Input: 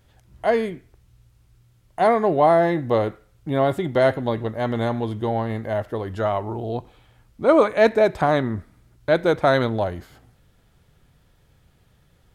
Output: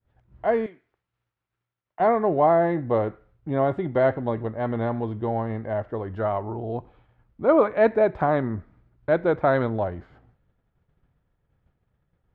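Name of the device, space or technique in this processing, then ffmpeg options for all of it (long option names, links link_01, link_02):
hearing-loss simulation: -filter_complex "[0:a]lowpass=1800,agate=range=-33dB:threshold=-50dB:ratio=3:detection=peak,asettb=1/sr,asplit=3[link_01][link_02][link_03];[link_01]atrim=end=0.664[link_04];[link_02]atrim=start=0.66:end=2,asetpts=PTS-STARTPTS,afade=type=in:duration=0.004:curve=qsin,afade=type=out:start_time=1.336:duration=0.004:curve=qsin,highpass=frequency=1400:poles=1[link_05];[link_03]atrim=start=1.996[link_06];[link_04][link_05]acrossfade=duration=0.004:curve1=hsin:curve2=qsin[link_07];[link_07][link_06]acrossfade=duration=0.004:curve1=qsin:curve2=hsin,volume=-2.5dB"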